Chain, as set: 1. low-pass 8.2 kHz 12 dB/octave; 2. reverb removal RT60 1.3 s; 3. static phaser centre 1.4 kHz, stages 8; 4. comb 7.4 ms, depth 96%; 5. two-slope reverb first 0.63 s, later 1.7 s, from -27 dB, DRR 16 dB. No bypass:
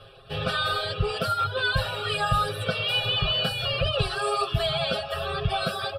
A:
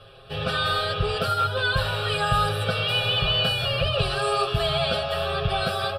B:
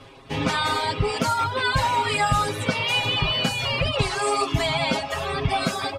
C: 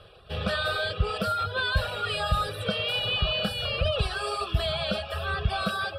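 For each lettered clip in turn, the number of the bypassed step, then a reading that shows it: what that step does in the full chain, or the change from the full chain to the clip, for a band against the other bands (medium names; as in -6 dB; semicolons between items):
2, loudness change +2.0 LU; 3, 8 kHz band +7.0 dB; 4, 250 Hz band +3.0 dB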